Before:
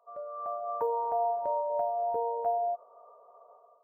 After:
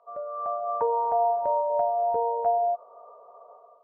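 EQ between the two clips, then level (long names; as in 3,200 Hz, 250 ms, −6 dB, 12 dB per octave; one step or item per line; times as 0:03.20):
dynamic equaliser 320 Hz, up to −4 dB, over −47 dBFS, Q 1.2
high-frequency loss of the air 190 metres
+7.0 dB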